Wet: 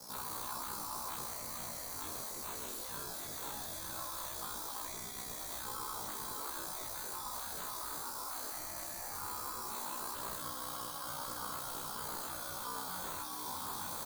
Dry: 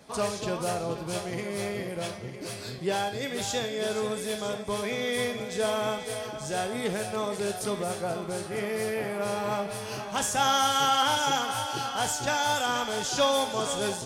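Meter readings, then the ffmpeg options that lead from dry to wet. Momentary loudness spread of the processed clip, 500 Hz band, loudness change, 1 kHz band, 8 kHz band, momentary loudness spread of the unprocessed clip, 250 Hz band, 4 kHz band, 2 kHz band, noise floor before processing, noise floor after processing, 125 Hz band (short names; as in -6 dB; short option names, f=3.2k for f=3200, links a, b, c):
1 LU, -22.0 dB, -11.0 dB, -13.5 dB, -7.5 dB, 9 LU, -18.5 dB, -15.0 dB, -16.0 dB, -38 dBFS, -44 dBFS, -16.5 dB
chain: -filter_complex "[0:a]acrossover=split=140|1500|2900[a][b][c][d];[a]dynaudnorm=f=390:g=17:m=13.5dB[e];[e][b][c][d]amix=inputs=4:normalize=0,acrusher=samples=6:mix=1:aa=0.000001,equalizer=f=5.3k:w=6:g=10,bandreject=f=50:t=h:w=6,bandreject=f=100:t=h:w=6,bandreject=f=150:t=h:w=6,bandreject=f=200:t=h:w=6,bandreject=f=250:t=h:w=6,aeval=exprs='val(0)*sin(2*PI*31*n/s)':c=same,asplit=7[f][g][h][i][j][k][l];[g]adelay=116,afreqshift=-74,volume=-10dB[m];[h]adelay=232,afreqshift=-148,volume=-15.2dB[n];[i]adelay=348,afreqshift=-222,volume=-20.4dB[o];[j]adelay=464,afreqshift=-296,volume=-25.6dB[p];[k]adelay=580,afreqshift=-370,volume=-30.8dB[q];[l]adelay=696,afreqshift=-444,volume=-36dB[r];[f][m][n][o][p][q][r]amix=inputs=7:normalize=0,aexciter=amount=9:drive=7.9:freq=4.4k,acompressor=threshold=-24dB:ratio=12,afftfilt=real='re*lt(hypot(re,im),0.0282)':imag='im*lt(hypot(re,im),0.0282)':win_size=1024:overlap=0.75,firequalizer=gain_entry='entry(700,0);entry(1000,9);entry(1900,-6)':delay=0.05:min_phase=1,flanger=delay=19.5:depth=3.9:speed=0.18,volume=2dB"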